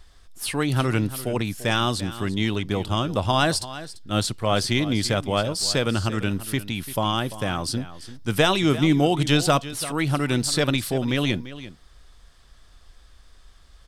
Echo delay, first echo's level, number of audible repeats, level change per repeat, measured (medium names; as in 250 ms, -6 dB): 342 ms, -15.0 dB, 1, no regular repeats